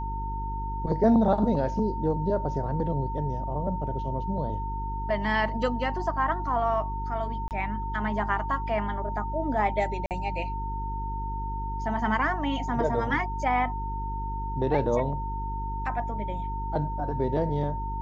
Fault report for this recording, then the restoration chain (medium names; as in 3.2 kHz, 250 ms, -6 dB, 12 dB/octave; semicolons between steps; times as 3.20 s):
hum 50 Hz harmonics 8 -33 dBFS
whine 910 Hz -33 dBFS
7.48–7.51 s: dropout 28 ms
10.06–10.11 s: dropout 48 ms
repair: de-hum 50 Hz, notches 8; band-stop 910 Hz, Q 30; interpolate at 7.48 s, 28 ms; interpolate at 10.06 s, 48 ms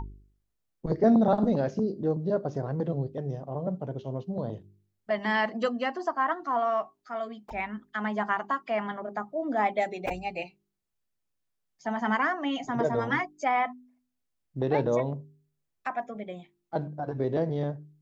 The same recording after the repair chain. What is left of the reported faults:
nothing left